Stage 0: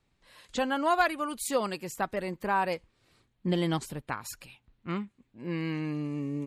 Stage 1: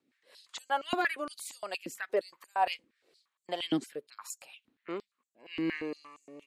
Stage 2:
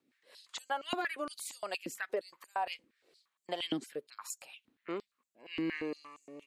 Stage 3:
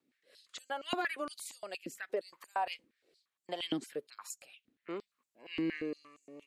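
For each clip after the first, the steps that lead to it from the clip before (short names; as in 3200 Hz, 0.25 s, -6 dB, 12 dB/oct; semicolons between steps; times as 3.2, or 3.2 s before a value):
rotary speaker horn 5 Hz, later 0.85 Hz, at 2.11; stepped high-pass 8.6 Hz 270–7300 Hz; gain -2.5 dB
compressor 6:1, threshold -31 dBFS, peak gain reduction 9 dB
rotary speaker horn 0.7 Hz; gain +1 dB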